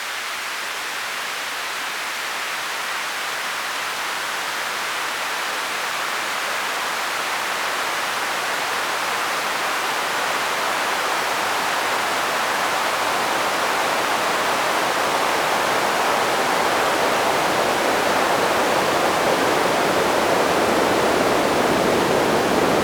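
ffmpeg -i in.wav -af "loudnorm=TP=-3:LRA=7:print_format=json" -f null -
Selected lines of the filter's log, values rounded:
"input_i" : "-20.0",
"input_tp" : "-5.4",
"input_lra" : "5.5",
"input_thresh" : "-30.0",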